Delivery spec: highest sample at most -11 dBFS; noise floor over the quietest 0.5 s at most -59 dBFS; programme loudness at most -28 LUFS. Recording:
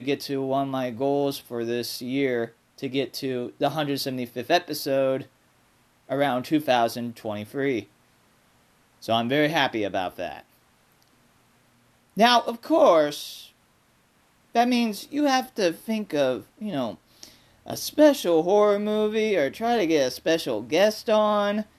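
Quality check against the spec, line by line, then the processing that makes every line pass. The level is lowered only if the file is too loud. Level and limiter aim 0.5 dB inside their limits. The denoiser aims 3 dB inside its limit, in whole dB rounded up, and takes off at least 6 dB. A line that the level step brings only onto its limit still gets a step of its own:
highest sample -6.0 dBFS: fail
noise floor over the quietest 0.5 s -63 dBFS: OK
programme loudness -24.0 LUFS: fail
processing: gain -4.5 dB; limiter -11.5 dBFS

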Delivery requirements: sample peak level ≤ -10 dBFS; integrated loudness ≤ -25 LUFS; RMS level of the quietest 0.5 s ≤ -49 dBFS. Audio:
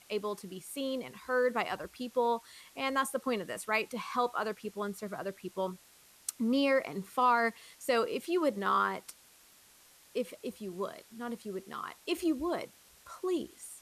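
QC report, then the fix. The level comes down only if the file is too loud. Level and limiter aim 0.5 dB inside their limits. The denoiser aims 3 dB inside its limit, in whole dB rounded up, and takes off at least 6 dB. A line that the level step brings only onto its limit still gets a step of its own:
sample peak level -17.0 dBFS: OK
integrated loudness -33.5 LUFS: OK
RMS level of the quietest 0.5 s -61 dBFS: OK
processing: none

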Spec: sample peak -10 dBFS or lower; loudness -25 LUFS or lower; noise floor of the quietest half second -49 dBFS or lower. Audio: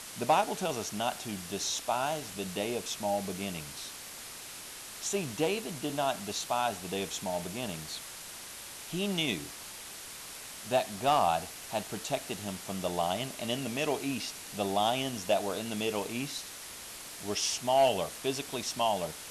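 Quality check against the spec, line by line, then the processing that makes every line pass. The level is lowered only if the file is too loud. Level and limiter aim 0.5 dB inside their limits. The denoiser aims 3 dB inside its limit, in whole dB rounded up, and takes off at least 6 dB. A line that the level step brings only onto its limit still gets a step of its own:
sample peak -16.0 dBFS: OK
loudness -33.0 LUFS: OK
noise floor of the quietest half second -45 dBFS: fail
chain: denoiser 7 dB, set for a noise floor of -45 dBFS

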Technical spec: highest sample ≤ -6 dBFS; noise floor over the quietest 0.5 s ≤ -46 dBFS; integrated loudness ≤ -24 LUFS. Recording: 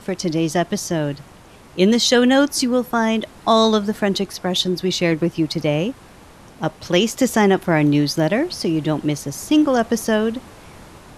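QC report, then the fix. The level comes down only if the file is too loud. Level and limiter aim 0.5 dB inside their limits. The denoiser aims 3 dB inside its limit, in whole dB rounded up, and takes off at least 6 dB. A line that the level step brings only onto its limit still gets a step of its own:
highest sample -2.5 dBFS: fail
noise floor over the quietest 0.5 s -44 dBFS: fail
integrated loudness -19.0 LUFS: fail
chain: gain -5.5 dB

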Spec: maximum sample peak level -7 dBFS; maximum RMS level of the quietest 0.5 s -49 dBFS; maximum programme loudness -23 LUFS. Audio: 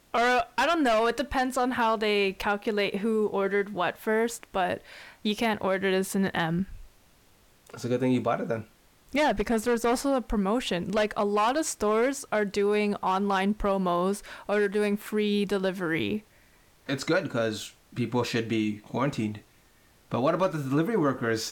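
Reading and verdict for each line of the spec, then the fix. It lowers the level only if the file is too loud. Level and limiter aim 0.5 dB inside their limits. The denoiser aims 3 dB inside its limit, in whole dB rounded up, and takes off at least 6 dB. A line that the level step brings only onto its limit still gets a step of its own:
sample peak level -13.0 dBFS: OK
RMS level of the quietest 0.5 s -60 dBFS: OK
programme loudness -27.0 LUFS: OK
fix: none

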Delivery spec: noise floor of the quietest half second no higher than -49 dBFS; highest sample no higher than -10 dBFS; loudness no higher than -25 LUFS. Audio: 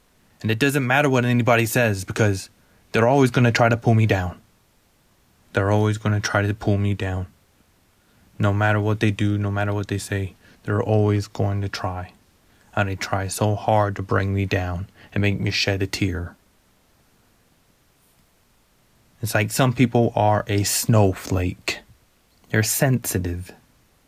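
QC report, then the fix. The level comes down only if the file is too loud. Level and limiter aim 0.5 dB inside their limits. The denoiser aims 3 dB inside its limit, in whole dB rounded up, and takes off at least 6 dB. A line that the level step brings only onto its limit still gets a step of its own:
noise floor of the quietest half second -60 dBFS: OK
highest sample -6.0 dBFS: fail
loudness -21.5 LUFS: fail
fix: gain -4 dB; limiter -10.5 dBFS

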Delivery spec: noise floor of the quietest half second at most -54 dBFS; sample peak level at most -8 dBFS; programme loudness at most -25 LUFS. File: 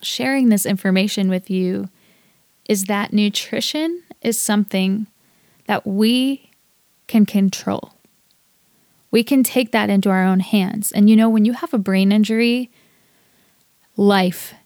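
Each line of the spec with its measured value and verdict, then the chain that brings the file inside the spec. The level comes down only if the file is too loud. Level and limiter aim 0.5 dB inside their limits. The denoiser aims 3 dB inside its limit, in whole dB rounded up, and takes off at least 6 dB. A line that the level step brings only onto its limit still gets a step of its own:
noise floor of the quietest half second -60 dBFS: OK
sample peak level -3.5 dBFS: fail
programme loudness -17.5 LUFS: fail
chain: gain -8 dB

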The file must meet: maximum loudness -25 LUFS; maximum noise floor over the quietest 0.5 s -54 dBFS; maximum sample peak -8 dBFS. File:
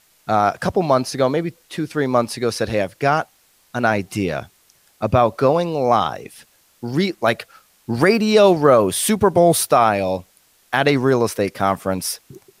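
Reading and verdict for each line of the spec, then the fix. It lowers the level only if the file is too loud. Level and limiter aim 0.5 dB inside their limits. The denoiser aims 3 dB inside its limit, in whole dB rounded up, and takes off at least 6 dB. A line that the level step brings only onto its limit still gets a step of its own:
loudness -18.5 LUFS: fail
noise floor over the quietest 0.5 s -57 dBFS: OK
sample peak -3.0 dBFS: fail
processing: gain -7 dB

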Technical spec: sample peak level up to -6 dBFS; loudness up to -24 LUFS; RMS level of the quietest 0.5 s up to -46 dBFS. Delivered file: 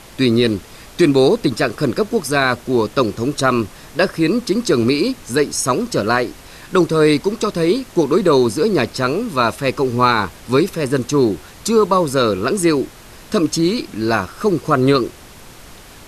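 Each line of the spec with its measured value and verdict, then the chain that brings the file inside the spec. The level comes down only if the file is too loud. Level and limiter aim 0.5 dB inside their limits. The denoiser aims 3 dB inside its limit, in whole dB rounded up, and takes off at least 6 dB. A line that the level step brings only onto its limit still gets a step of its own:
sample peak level -3.0 dBFS: fail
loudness -17.0 LUFS: fail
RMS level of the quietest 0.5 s -39 dBFS: fail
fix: gain -7.5 dB

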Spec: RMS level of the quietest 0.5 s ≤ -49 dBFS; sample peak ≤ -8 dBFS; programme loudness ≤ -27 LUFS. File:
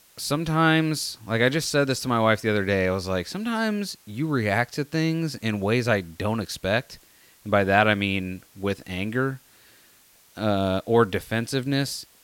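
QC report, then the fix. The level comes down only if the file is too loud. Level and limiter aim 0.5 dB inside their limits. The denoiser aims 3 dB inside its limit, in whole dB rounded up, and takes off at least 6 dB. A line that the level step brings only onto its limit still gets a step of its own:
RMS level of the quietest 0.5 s -56 dBFS: OK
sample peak -4.5 dBFS: fail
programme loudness -24.5 LUFS: fail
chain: gain -3 dB; limiter -8.5 dBFS

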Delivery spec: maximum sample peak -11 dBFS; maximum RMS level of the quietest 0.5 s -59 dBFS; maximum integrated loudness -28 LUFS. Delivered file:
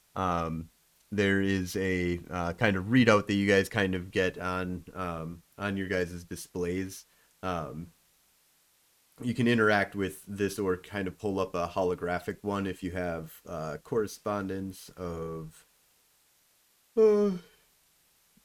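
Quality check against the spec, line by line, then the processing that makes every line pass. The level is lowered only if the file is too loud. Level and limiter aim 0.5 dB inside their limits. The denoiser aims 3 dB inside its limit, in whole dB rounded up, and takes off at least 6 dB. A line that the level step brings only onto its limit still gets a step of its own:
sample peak -9.0 dBFS: fail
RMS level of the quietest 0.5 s -67 dBFS: OK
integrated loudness -30.0 LUFS: OK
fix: limiter -11.5 dBFS

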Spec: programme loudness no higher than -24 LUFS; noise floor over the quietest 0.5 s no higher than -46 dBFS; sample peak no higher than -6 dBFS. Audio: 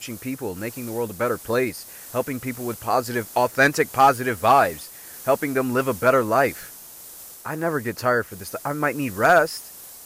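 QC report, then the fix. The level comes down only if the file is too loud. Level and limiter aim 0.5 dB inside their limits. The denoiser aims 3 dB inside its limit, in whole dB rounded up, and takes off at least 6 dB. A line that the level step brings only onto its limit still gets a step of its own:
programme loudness -22.0 LUFS: fail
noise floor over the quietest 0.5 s -42 dBFS: fail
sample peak -5.5 dBFS: fail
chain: denoiser 6 dB, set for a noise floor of -42 dBFS; gain -2.5 dB

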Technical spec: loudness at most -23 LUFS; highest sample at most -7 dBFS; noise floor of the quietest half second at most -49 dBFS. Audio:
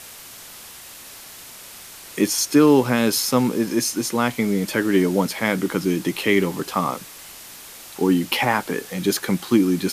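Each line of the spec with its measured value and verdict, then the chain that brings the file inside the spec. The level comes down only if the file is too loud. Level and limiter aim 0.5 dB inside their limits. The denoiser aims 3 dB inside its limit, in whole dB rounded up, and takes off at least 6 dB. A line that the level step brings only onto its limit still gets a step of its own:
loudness -20.5 LUFS: fail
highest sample -4.5 dBFS: fail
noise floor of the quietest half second -41 dBFS: fail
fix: denoiser 8 dB, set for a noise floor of -41 dBFS; gain -3 dB

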